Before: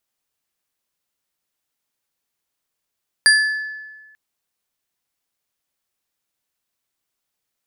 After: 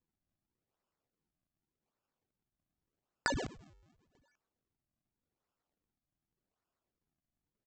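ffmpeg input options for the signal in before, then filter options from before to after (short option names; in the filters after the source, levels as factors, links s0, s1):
-f lavfi -i "aevalsrc='0.355*pow(10,-3*t/1.38)*sin(2*PI*1730*t)+0.251*pow(10,-3*t/0.679)*sin(2*PI*4769.6*t)+0.178*pow(10,-3*t/0.424)*sin(2*PI*9348.9*t)':d=0.89:s=44100"
-af "asuperstop=centerf=3600:order=20:qfactor=0.55,aecho=1:1:202:0.355,aresample=16000,acrusher=samples=20:mix=1:aa=0.000001:lfo=1:lforange=32:lforate=0.86,aresample=44100"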